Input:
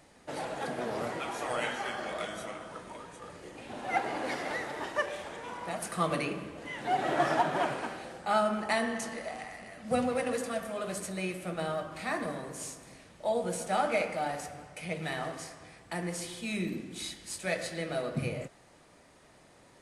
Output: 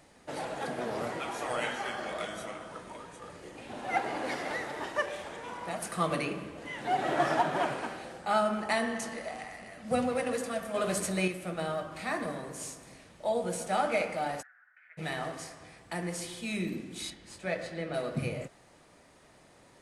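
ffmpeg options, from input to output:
-filter_complex "[0:a]asettb=1/sr,asplit=3[a][b][c];[a]atrim=end=10.744[d];[b]atrim=start=10.74:end=11.28,asetpts=PTS-STARTPTS,afade=t=in:d=0.004:c=qsin,afade=t=out:st=0.536:d=0.004:c=qsin,acontrast=39[e];[c]atrim=start=11.276[f];[d][e]acrossfade=d=0.004:c1=hsin:c2=qsin[g];[g][f]acrossfade=d=0.004:c1=qsin:c2=hsin,asplit=3[h][i][j];[h]afade=t=out:st=14.41:d=0.02[k];[i]asuperpass=centerf=1600:order=4:qfactor=4.2,afade=t=in:st=14.41:d=0.02,afade=t=out:st=14.97:d=0.02[l];[j]afade=t=in:st=14.97:d=0.02[m];[k][l][m]amix=inputs=3:normalize=0,asettb=1/sr,asplit=3[n][o][p];[n]atrim=end=17.104[q];[o]atrim=start=17.1:end=17.94,asetpts=PTS-STARTPTS,afade=t=in:d=0.004:c=qsin,afade=t=out:st=0.836:d=0.004:c=qsin,aemphasis=mode=reproduction:type=75kf[r];[p]atrim=start=17.936[s];[q][r]acrossfade=d=0.004:c1=hsin:c2=qsin[t];[t][s]acrossfade=d=0.004:c1=qsin:c2=hsin"

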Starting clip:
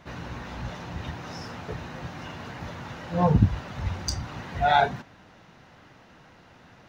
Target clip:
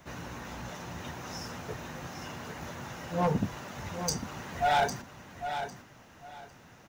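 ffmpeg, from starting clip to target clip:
-filter_complex "[0:a]acrossover=split=160|1200[a][b][c];[a]acompressor=threshold=-43dB:ratio=6[d];[d][b][c]amix=inputs=3:normalize=0,aexciter=amount=3.3:drive=4.8:freq=5.9k,volume=18dB,asoftclip=hard,volume=-18dB,aecho=1:1:803|1606|2409:0.355|0.0781|0.0172,volume=-3dB"

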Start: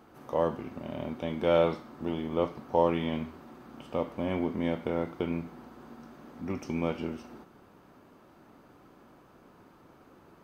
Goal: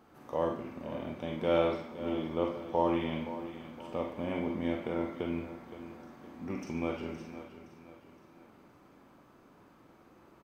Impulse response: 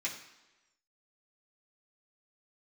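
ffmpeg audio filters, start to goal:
-filter_complex "[0:a]aecho=1:1:517|1034|1551|2068:0.224|0.0918|0.0376|0.0154,asplit=2[a][b];[1:a]atrim=start_sample=2205,adelay=42[c];[b][c]afir=irnorm=-1:irlink=0,volume=-5dB[d];[a][d]amix=inputs=2:normalize=0,volume=-4.5dB"

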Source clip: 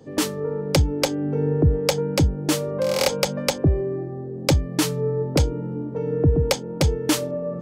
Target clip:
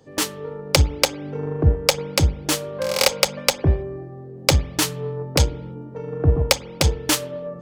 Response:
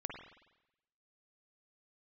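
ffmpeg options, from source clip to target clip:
-filter_complex "[0:a]equalizer=f=240:t=o:w=2.5:g=-8.5,aeval=exprs='0.422*(cos(1*acos(clip(val(0)/0.422,-1,1)))-cos(1*PI/2))+0.0335*(cos(7*acos(clip(val(0)/0.422,-1,1)))-cos(7*PI/2))':c=same,asplit=2[a][b];[1:a]atrim=start_sample=2205,afade=t=out:st=0.38:d=0.01,atrim=end_sample=17199[c];[b][c]afir=irnorm=-1:irlink=0,volume=-14dB[d];[a][d]amix=inputs=2:normalize=0,volume=5.5dB"

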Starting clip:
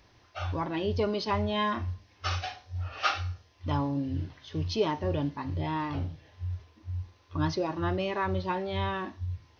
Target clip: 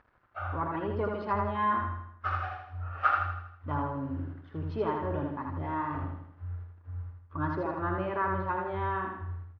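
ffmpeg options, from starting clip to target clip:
-filter_complex "[0:a]acompressor=mode=upward:threshold=-49dB:ratio=2.5,aeval=exprs='sgn(val(0))*max(abs(val(0))-0.00188,0)':c=same,lowpass=f=1.4k:t=q:w=2.8,asplit=2[a][b];[b]aecho=0:1:80|160|240|320|400|480:0.668|0.321|0.154|0.0739|0.0355|0.017[c];[a][c]amix=inputs=2:normalize=0,volume=-5dB"

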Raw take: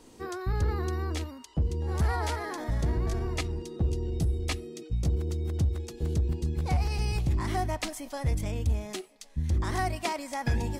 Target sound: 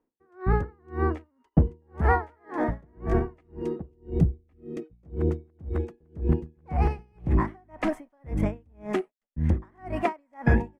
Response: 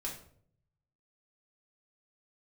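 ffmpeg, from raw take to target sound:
-filter_complex "[0:a]agate=range=-33dB:threshold=-46dB:ratio=16:detection=peak,firequalizer=gain_entry='entry(120,0);entry(170,7);entry(1800,4);entry(4000,-18)':delay=0.05:min_phase=1,asettb=1/sr,asplit=3[a][b][c];[a]atrim=end=4.204[d];[b]atrim=start=4.2:end=4.77,asetpts=PTS-STARTPTS,afade=t=in:d=0.004:c=qsin,afade=t=out:st=0.566:d=0.004:c=qsin,acrossover=split=230[e][f];[f]acompressor=threshold=-45dB:ratio=3[g];[e][g]amix=inputs=2:normalize=0[h];[c]atrim=start=4.766[i];[d][h]acrossfade=d=0.004:c1=hsin:c2=qsin[j];[j][i]acrossfade=d=0.004:c1=qsin:c2=hsin,aeval=exprs='val(0)*pow(10,-40*(0.5-0.5*cos(2*PI*1.9*n/s))/20)':c=same,volume=6.5dB"

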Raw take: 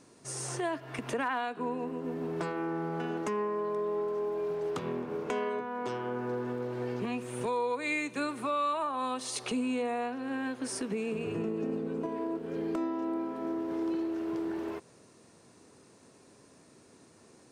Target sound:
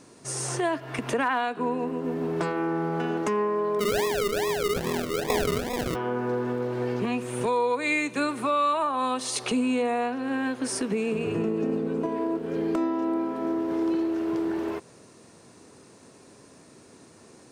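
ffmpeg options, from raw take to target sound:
-filter_complex "[0:a]asplit=3[a][b][c];[a]afade=t=out:st=3.79:d=0.02[d];[b]acrusher=samples=42:mix=1:aa=0.000001:lfo=1:lforange=25.2:lforate=2.4,afade=t=in:st=3.79:d=0.02,afade=t=out:st=5.94:d=0.02[e];[c]afade=t=in:st=5.94:d=0.02[f];[d][e][f]amix=inputs=3:normalize=0,volume=6.5dB"

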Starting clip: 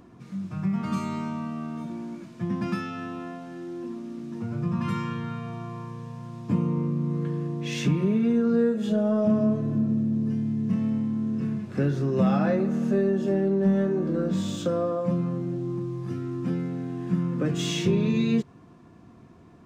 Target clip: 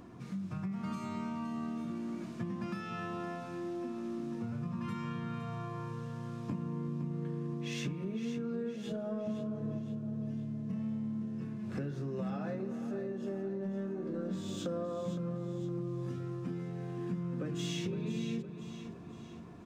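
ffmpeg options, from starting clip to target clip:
-filter_complex "[0:a]bandreject=f=52.11:t=h:w=4,bandreject=f=104.22:t=h:w=4,bandreject=f=156.33:t=h:w=4,bandreject=f=208.44:t=h:w=4,bandreject=f=260.55:t=h:w=4,bandreject=f=312.66:t=h:w=4,bandreject=f=364.77:t=h:w=4,bandreject=f=416.88:t=h:w=4,acompressor=threshold=-36dB:ratio=6,asplit=2[a][b];[b]aecho=0:1:513|1026|1539|2052|2565:0.316|0.158|0.0791|0.0395|0.0198[c];[a][c]amix=inputs=2:normalize=0"

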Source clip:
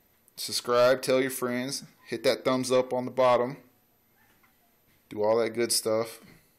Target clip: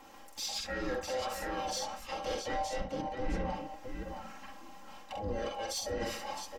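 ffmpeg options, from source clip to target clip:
-filter_complex "[0:a]afftfilt=real='real(if(between(b,1,1008),(2*floor((b-1)/48)+1)*48-b,b),0)':imag='imag(if(between(b,1,1008),(2*floor((b-1)/48)+1)*48-b,b),0)*if(between(b,1,1008),-1,1)':win_size=2048:overlap=0.75,acrossover=split=160[a][b];[b]acompressor=threshold=-43dB:ratio=2[c];[a][c]amix=inputs=2:normalize=0,highshelf=f=7.8k:t=q:w=1.5:g=-7,areverse,acompressor=threshold=-45dB:ratio=4,areverse,equalizer=f=100:t=o:w=0.33:g=5,equalizer=f=200:t=o:w=0.33:g=6,equalizer=f=630:t=o:w=0.33:g=-7,equalizer=f=4k:t=o:w=0.33:g=-10,equalizer=f=10k:t=o:w=0.33:g=-9,asplit=2[d][e];[e]aecho=0:1:45|51|67|664:0.631|0.158|0.335|0.422[f];[d][f]amix=inputs=2:normalize=0,asplit=4[g][h][i][j];[h]asetrate=33038,aresample=44100,atempo=1.33484,volume=-7dB[k];[i]asetrate=35002,aresample=44100,atempo=1.25992,volume=-9dB[l];[j]asetrate=58866,aresample=44100,atempo=0.749154,volume=-14dB[m];[g][k][l][m]amix=inputs=4:normalize=0,asoftclip=type=tanh:threshold=-38dB,aecho=1:1:3.7:0.83,volume=8.5dB"

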